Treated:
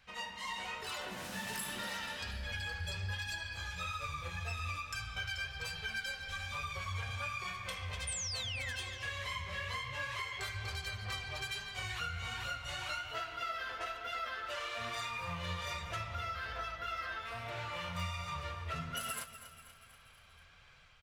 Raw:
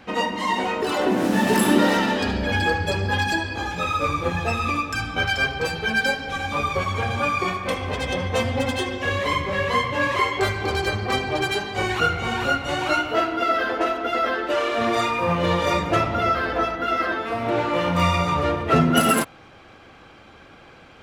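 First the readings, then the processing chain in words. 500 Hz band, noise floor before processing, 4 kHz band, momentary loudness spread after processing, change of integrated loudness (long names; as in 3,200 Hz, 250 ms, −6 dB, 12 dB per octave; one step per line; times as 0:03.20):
−25.5 dB, −48 dBFS, −12.0 dB, 3 LU, −17.0 dB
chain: low-shelf EQ 240 Hz +8.5 dB
notch filter 810 Hz, Q 12
sound drawn into the spectrogram fall, 0:08.07–0:08.76, 1,500–9,400 Hz −26 dBFS
automatic gain control gain up to 4 dB
guitar amp tone stack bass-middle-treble 10-0-10
mains-hum notches 50/100 Hz
repeating echo 241 ms, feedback 56%, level −16.5 dB
downward compressor, threshold −25 dBFS, peak gain reduction 7 dB
flanger 1.2 Hz, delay 6.6 ms, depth 6.1 ms, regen +74%
level −6.5 dB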